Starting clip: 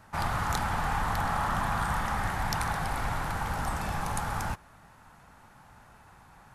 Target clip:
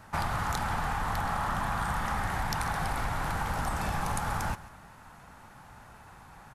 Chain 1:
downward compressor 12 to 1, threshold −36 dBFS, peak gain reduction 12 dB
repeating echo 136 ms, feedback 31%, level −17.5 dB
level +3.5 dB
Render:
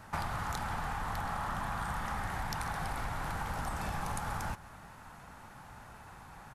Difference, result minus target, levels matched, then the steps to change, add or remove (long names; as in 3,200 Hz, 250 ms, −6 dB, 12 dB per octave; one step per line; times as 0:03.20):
downward compressor: peak gain reduction +5.5 dB
change: downward compressor 12 to 1, threshold −30 dBFS, peak gain reduction 6.5 dB